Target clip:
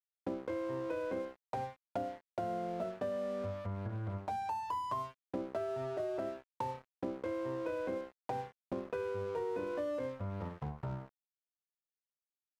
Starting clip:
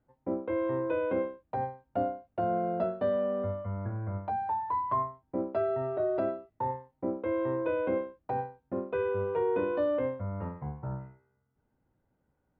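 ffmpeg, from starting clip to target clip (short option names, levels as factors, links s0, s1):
-af "aeval=exprs='sgn(val(0))*max(abs(val(0))-0.00501,0)':c=same,acompressor=threshold=0.00794:ratio=4,volume=1.78"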